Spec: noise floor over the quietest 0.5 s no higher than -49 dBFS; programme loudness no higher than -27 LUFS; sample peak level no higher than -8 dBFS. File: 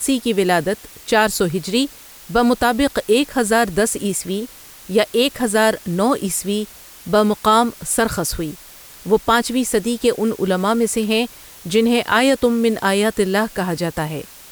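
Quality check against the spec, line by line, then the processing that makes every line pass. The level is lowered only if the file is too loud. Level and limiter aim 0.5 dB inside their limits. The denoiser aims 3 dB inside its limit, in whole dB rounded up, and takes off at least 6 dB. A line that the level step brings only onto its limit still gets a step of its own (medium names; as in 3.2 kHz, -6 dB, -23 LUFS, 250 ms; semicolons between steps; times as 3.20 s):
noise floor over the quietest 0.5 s -41 dBFS: fail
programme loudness -18.5 LUFS: fail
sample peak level -4.0 dBFS: fail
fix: trim -9 dB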